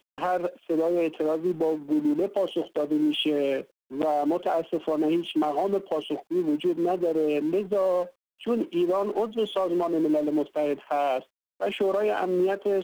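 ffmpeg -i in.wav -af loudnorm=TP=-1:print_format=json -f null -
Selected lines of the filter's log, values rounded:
"input_i" : "-26.4",
"input_tp" : "-15.9",
"input_lra" : "0.6",
"input_thresh" : "-36.5",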